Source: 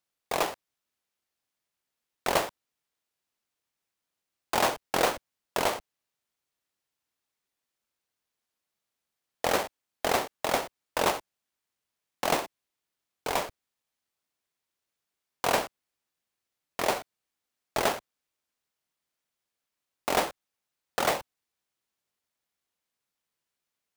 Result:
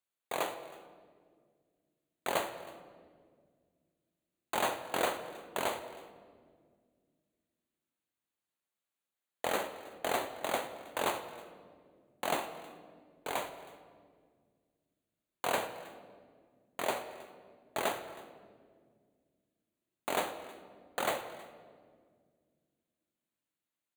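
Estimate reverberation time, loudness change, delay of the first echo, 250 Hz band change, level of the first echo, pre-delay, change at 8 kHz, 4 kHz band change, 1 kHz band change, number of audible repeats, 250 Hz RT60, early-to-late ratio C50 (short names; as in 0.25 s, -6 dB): 1.8 s, -7.0 dB, 0.318 s, -6.5 dB, -21.5 dB, 3 ms, -7.5 dB, -7.0 dB, -6.0 dB, 1, 3.0 s, 10.0 dB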